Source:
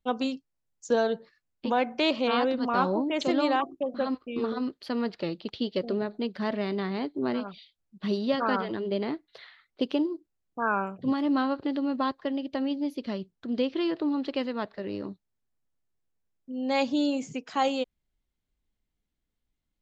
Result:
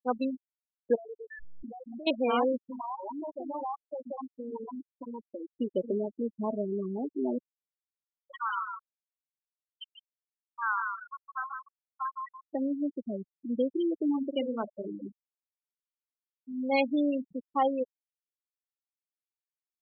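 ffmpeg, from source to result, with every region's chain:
-filter_complex "[0:a]asettb=1/sr,asplit=3[a][b][c];[a]atrim=end=0.954[d];[b]atrim=start=0.95:end=2.07,asetpts=PTS-STARTPTS,afade=t=in:d=0.004:c=qsin,afade=t=out:st=1.116:d=0.004:c=qsin,aeval=exprs='val(0)+0.5*0.0211*sgn(val(0))':c=same,lowpass=2.5k,acompressor=threshold=-35dB:ratio=12:attack=3.2:release=140:knee=1:detection=peak[e];[c]atrim=start=2.066[f];[d][e]acrossfade=d=0.004:c1=hsin:c2=qsin[g];[g][f]acrossfade=d=0.004:c1=qsin:c2=hsin,asettb=1/sr,asplit=3[h][i][j];[h]atrim=end=2.574[k];[i]atrim=start=2.57:end=5.57,asetpts=PTS-STARTPTS,afade=t=in:d=0.004:c=qsin,afade=t=out:st=2.996:d=0.004:c=qsin,equalizer=f=940:w=1.8:g=14,acompressor=threshold=-33dB:ratio=4:attack=3.2:release=140:knee=1:detection=peak,acrossover=split=1600[l][m];[l]adelay=120[n];[n][m]amix=inputs=2:normalize=0,atrim=end_sample=132300[o];[j]atrim=start=5.566[p];[k][o]acrossfade=d=0.004:c1=hsin:c2=qsin[q];[q][p]acrossfade=d=0.004:c1=qsin:c2=hsin,asettb=1/sr,asplit=3[r][s][t];[r]atrim=end=7.384[u];[s]atrim=start=7.38:end=12.53,asetpts=PTS-STARTPTS,afade=t=in:d=0.004:c=qsin,afade=t=out:st=5.146:d=0.004:c=qsin,highpass=f=1k:w=0.5412,highpass=f=1k:w=1.3066,bandreject=f=1.8k:w=27,aecho=1:1:159|318|477|636|795|954:0.631|0.278|0.122|0.0537|0.0236|0.0104,atrim=end_sample=227115[v];[t]atrim=start=12.526[w];[u][v]acrossfade=d=0.004:c1=hsin:c2=qsin[x];[x][w]acrossfade=d=0.004:c1=qsin:c2=hsin,asettb=1/sr,asplit=3[y][z][aa];[y]atrim=end=14.044[ab];[z]atrim=start=14.04:end=16.82,asetpts=PTS-STARTPTS,afade=t=in:d=0.004:c=qsin,afade=t=out:st=2.776:d=0.004:c=qsin,highshelf=f=2.2k:g=3.5,asplit=2[ac][ad];[ad]adelay=48,volume=-7dB[ae];[ac][ae]amix=inputs=2:normalize=0,atrim=end_sample=122598[af];[aa]atrim=start=16.816[ag];[ab][af]acrossfade=d=0.004:c1=hsin:c2=qsin[ah];[ah][ag]acrossfade=d=0.004:c1=qsin:c2=hsin,acompressor=mode=upward:threshold=-35dB:ratio=2.5,afftfilt=real='re*gte(hypot(re,im),0.1)':imag='im*gte(hypot(re,im),0.1)':win_size=1024:overlap=0.75,equalizer=f=120:w=1.5:g=-10.5"

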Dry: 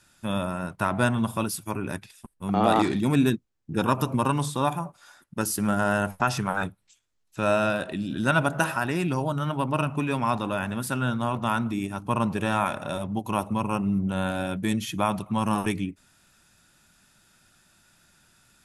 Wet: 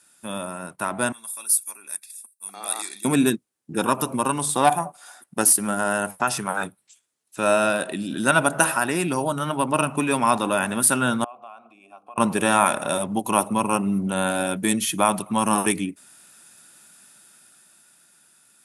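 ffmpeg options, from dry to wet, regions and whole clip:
-filter_complex "[0:a]asettb=1/sr,asplit=3[a][b][c];[a]atrim=end=1.124[d];[b]atrim=start=1.12:end=3.05,asetpts=PTS-STARTPTS,afade=t=in:d=0.004:c=qsin,afade=t=out:st=1.926:d=0.004:c=qsin,asuperstop=centerf=3000:order=12:qfactor=6.4,aderivative[e];[c]atrim=start=3.046[f];[d][e]acrossfade=d=0.004:c1=hsin:c2=qsin[g];[g][f]acrossfade=d=0.004:c1=qsin:c2=hsin,asettb=1/sr,asplit=3[h][i][j];[h]atrim=end=4.494[k];[i]atrim=start=4.49:end=5.53,asetpts=PTS-STARTPTS,afade=t=in:d=0.004:c=qsin,afade=t=out:st=1.036:d=0.004:c=qsin,equalizer=f=730:w=6.2:g=11,acontrast=46,aeval=exprs='(tanh(2.51*val(0)+0.6)-tanh(0.6))/2.51':c=same[l];[j]atrim=start=5.526[m];[k][l]acrossfade=d=0.004:c1=hsin:c2=qsin[n];[n][m]acrossfade=d=0.004:c1=qsin:c2=hsin,asettb=1/sr,asplit=3[o][p][q];[o]atrim=end=11.244[r];[p]atrim=start=11.24:end=12.18,asetpts=PTS-STARTPTS,afade=t=in:d=0.004:c=qsin,afade=t=out:st=0.936:d=0.004:c=qsin,bandreject=f=60:t=h:w=6,bandreject=f=120:t=h:w=6,bandreject=f=180:t=h:w=6,bandreject=f=240:t=h:w=6,bandreject=f=300:t=h:w=6,bandreject=f=360:t=h:w=6,bandreject=f=420:t=h:w=6,bandreject=f=480:t=h:w=6,bandreject=f=540:t=h:w=6,acompressor=threshold=-34dB:ratio=8:attack=3.2:release=140:knee=1:detection=peak,asplit=3[s][t][u];[s]bandpass=f=730:t=q:w=8,volume=0dB[v];[t]bandpass=f=1.09k:t=q:w=8,volume=-6dB[w];[u]bandpass=f=2.44k:t=q:w=8,volume=-9dB[x];[v][w][x]amix=inputs=3:normalize=0[y];[q]atrim=start=12.176[z];[r][y]acrossfade=d=0.004:c1=hsin:c2=qsin[aa];[aa][z]acrossfade=d=0.004:c1=qsin:c2=hsin,highpass=220,equalizer=f=9.5k:t=o:w=0.47:g=14.5,dynaudnorm=f=150:g=21:m=11.5dB,volume=-1.5dB"

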